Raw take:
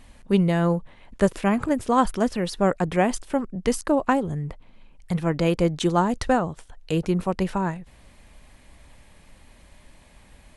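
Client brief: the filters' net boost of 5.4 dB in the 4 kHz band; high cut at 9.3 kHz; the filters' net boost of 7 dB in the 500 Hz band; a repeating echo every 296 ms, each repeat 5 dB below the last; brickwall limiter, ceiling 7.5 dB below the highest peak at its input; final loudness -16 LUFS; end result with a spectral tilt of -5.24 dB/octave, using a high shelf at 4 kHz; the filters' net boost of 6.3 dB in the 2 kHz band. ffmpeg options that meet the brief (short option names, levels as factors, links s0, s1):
-af "lowpass=9300,equalizer=f=500:t=o:g=8,equalizer=f=2000:t=o:g=7,highshelf=f=4000:g=-4.5,equalizer=f=4000:t=o:g=7,alimiter=limit=0.316:level=0:latency=1,aecho=1:1:296|592|888|1184|1480|1776|2072:0.562|0.315|0.176|0.0988|0.0553|0.031|0.0173,volume=1.78"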